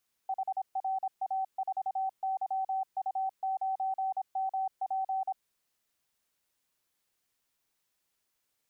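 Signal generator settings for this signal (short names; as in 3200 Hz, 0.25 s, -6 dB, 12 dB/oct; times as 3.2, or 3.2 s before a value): Morse "HRA4YU9MP" 26 wpm 766 Hz -28.5 dBFS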